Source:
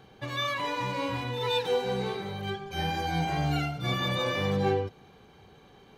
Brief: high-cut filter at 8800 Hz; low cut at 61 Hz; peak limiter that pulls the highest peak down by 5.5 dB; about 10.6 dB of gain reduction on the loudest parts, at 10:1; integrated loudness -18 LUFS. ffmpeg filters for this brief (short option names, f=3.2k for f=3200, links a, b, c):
-af "highpass=61,lowpass=8.8k,acompressor=threshold=-33dB:ratio=10,volume=20.5dB,alimiter=limit=-9.5dB:level=0:latency=1"